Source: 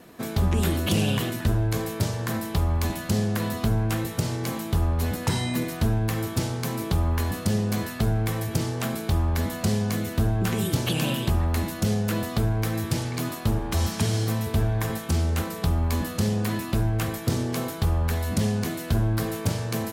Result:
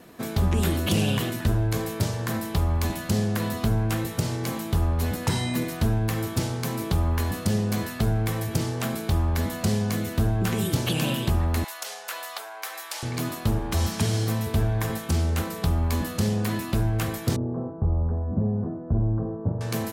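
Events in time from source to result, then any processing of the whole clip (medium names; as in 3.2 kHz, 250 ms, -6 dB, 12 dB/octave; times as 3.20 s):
11.64–13.03 s: high-pass 730 Hz 24 dB/octave
17.36–19.61 s: Gaussian low-pass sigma 9.9 samples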